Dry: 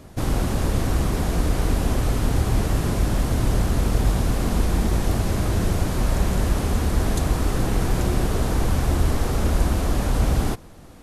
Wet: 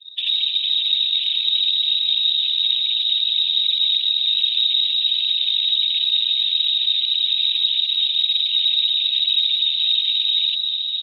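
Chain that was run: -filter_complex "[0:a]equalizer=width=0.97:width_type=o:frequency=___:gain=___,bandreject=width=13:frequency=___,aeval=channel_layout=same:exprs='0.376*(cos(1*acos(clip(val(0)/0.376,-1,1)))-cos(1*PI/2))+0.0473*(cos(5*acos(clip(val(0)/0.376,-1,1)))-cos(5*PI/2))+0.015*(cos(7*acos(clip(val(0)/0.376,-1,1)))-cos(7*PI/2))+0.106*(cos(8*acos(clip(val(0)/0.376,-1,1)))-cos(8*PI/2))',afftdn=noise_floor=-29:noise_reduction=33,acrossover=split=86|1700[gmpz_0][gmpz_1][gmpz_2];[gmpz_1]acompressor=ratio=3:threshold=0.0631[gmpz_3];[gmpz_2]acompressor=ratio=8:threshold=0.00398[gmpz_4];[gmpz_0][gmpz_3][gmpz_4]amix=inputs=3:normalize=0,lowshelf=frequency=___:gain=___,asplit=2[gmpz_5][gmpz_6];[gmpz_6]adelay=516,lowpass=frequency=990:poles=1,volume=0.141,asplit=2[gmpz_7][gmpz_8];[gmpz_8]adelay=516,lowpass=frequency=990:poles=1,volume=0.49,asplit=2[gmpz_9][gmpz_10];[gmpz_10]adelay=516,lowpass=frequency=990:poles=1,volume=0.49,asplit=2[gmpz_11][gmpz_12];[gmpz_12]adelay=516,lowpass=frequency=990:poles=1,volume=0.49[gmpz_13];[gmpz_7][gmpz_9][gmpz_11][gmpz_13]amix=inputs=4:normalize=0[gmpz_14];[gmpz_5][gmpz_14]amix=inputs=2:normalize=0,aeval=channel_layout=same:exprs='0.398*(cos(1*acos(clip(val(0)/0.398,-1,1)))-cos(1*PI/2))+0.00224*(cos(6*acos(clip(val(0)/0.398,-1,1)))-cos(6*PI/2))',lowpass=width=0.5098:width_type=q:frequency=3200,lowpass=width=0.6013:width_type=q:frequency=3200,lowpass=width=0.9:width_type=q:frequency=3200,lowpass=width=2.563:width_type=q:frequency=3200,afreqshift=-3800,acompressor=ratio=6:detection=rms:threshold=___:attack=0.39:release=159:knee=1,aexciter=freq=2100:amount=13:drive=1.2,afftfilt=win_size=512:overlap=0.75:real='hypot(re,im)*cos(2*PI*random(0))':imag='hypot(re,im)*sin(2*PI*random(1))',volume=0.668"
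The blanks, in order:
260, -14.5, 1700, 62, -5.5, 0.0501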